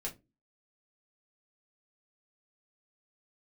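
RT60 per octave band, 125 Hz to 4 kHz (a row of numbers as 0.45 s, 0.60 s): 0.40 s, 0.45 s, 0.30 s, 0.20 s, 0.15 s, 0.15 s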